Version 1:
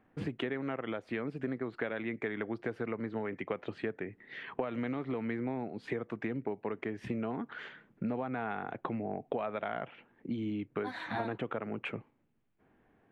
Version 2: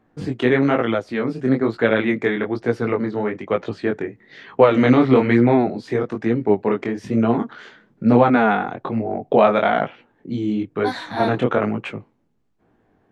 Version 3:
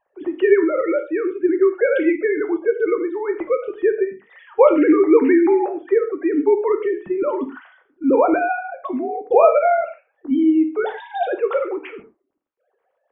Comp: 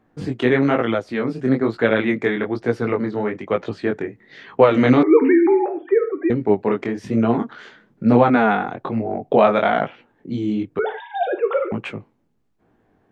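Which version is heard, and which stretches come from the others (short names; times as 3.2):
2
5.03–6.3 from 3
10.79–11.72 from 3
not used: 1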